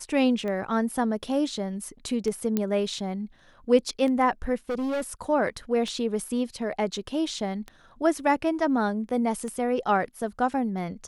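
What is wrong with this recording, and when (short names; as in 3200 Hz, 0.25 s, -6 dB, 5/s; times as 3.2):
tick 33 1/3 rpm -22 dBFS
2.57 pop -12 dBFS
4.69–5.02 clipped -25 dBFS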